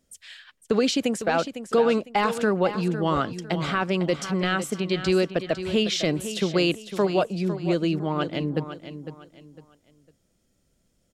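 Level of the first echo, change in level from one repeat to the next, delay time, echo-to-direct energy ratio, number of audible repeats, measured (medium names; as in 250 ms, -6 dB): -11.0 dB, -10.5 dB, 504 ms, -10.5 dB, 3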